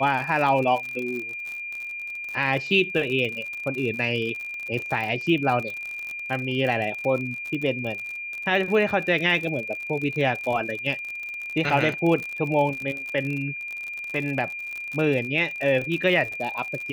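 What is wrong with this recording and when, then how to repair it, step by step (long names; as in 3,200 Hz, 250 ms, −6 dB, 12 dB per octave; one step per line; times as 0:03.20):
surface crackle 57 per second −29 dBFS
whistle 2,400 Hz −31 dBFS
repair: click removal
notch filter 2,400 Hz, Q 30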